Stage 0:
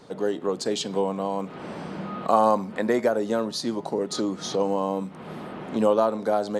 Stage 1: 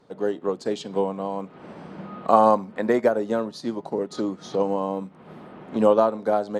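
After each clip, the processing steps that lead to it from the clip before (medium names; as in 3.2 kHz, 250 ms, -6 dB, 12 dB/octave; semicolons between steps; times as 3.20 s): treble shelf 3.7 kHz -8 dB; upward expansion 1.5:1, over -41 dBFS; trim +4.5 dB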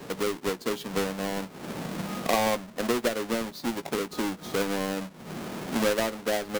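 square wave that keeps the level; doubling 17 ms -13.5 dB; three bands compressed up and down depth 70%; trim -9 dB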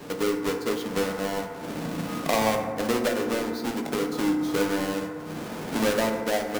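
FDN reverb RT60 2.1 s, low-frequency decay 1.3×, high-frequency decay 0.3×, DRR 3 dB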